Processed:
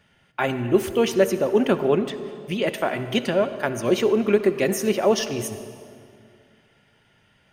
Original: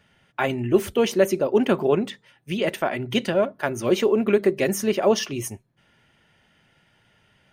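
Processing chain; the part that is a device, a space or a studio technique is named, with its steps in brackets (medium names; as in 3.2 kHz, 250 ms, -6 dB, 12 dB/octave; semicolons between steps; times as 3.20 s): saturated reverb return (on a send at -10 dB: reverberation RT60 2.3 s, pre-delay 57 ms + saturation -14 dBFS, distortion -17 dB)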